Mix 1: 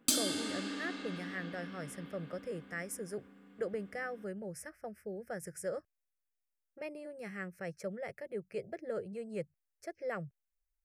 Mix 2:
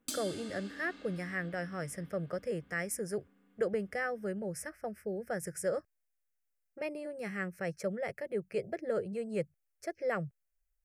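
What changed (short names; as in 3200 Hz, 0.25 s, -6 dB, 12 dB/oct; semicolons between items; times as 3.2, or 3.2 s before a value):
speech +5.0 dB; background -9.5 dB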